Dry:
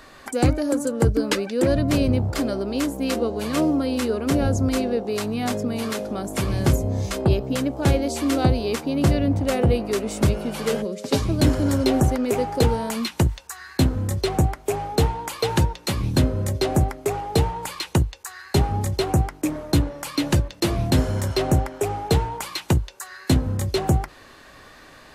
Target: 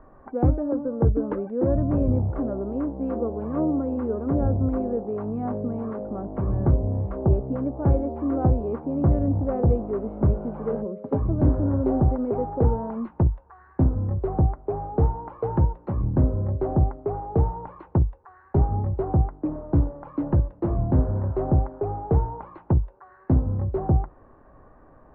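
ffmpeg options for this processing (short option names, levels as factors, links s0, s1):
-af "lowpass=f=1100:w=0.5412,lowpass=f=1100:w=1.3066,lowshelf=f=72:g=8.5,volume=0.668"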